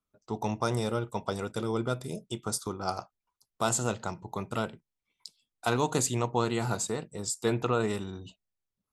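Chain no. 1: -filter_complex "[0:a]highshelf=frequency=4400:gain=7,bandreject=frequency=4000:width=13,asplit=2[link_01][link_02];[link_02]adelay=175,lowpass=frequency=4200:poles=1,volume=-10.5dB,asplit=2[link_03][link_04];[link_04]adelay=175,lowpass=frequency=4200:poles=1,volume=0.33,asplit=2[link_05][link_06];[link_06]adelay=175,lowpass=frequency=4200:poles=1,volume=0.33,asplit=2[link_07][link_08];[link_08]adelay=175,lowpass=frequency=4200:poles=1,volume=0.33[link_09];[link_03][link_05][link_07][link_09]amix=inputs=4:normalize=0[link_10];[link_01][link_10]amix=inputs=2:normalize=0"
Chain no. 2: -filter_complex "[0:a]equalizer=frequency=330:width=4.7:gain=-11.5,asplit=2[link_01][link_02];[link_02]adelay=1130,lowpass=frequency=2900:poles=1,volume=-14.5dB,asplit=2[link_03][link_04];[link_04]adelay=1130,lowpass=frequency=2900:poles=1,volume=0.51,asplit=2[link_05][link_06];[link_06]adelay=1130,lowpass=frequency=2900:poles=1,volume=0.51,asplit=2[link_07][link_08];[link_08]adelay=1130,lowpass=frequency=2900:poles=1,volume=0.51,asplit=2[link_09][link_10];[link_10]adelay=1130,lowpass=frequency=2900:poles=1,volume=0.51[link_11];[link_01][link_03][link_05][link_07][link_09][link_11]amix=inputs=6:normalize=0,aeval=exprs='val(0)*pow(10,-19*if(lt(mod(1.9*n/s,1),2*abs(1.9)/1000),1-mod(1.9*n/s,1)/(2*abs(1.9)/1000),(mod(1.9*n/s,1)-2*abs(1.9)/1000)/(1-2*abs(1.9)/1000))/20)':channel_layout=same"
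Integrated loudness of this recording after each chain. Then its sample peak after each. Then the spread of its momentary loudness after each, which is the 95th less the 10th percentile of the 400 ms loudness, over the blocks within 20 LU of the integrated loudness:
−29.5, −39.0 LKFS; −10.5, −15.5 dBFS; 15, 19 LU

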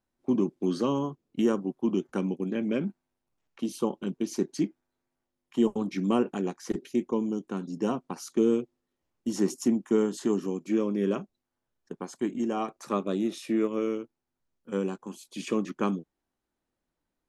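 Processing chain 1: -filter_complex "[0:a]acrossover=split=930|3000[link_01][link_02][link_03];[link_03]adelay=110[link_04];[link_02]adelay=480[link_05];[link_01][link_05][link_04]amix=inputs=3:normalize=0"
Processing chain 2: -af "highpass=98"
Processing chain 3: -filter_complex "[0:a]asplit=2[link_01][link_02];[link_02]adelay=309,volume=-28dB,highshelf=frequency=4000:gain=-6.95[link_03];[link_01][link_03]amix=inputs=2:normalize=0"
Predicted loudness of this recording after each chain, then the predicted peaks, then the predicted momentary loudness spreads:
−30.0, −30.0, −29.5 LKFS; −13.0, −12.5, −12.5 dBFS; 15, 9, 9 LU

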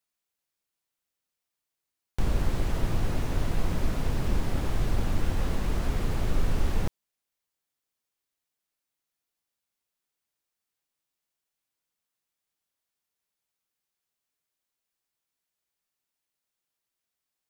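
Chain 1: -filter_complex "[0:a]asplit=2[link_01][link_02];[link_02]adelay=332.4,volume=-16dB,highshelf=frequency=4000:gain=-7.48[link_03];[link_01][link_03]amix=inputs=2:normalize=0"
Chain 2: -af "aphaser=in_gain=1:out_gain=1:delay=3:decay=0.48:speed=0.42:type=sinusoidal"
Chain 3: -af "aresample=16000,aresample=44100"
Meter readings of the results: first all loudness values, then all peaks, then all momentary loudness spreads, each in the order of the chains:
−31.0, −28.0, −31.5 LKFS; −12.5, −7.5, −13.0 dBFS; 4, 5, 2 LU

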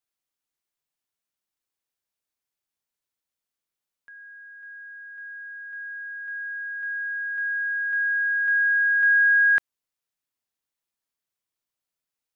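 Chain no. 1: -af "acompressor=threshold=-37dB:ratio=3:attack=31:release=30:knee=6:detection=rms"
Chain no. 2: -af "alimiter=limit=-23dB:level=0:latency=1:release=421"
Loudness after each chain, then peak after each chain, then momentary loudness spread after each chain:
−33.0, −27.0 LKFS; −25.5, −23.0 dBFS; 13, 17 LU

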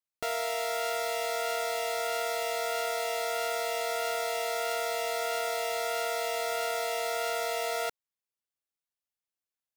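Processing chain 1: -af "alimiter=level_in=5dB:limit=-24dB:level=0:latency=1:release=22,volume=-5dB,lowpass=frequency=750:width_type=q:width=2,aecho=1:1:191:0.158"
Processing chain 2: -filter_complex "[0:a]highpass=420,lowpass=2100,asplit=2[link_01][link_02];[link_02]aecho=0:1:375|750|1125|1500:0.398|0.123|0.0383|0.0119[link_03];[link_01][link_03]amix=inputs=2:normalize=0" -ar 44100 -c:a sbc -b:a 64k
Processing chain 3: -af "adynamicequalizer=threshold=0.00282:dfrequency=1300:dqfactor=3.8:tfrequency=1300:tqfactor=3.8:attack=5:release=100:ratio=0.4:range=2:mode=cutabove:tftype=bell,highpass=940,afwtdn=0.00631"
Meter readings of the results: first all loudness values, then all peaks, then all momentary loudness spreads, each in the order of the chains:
−33.5, −32.5, −35.5 LKFS; −25.0, −20.0, −20.0 dBFS; 0, 2, 0 LU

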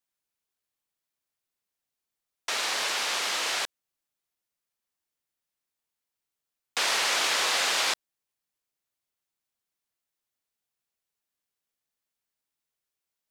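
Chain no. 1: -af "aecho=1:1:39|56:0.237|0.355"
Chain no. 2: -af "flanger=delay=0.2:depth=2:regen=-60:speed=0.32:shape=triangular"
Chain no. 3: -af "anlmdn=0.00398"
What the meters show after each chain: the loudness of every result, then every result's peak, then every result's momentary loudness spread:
−25.0, −30.0, −26.0 LKFS; −12.5, −16.5, −13.5 dBFS; 10, 10, 10 LU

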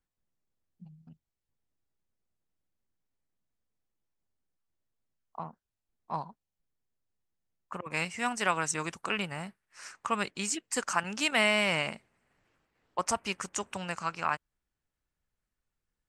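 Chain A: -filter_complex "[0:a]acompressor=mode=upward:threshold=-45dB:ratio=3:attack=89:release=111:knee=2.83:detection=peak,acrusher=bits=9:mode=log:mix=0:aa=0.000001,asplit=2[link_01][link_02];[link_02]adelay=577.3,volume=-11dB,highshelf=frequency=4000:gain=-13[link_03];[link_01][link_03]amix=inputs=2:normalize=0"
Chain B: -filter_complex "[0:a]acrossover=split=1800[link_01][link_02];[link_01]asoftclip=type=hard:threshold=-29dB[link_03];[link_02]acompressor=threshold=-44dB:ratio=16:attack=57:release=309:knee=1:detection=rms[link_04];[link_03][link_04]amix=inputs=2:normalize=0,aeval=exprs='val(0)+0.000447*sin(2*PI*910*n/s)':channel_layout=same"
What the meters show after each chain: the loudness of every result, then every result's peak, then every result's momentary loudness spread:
−32.0, −37.0 LKFS; −11.5, −21.5 dBFS; 20, 15 LU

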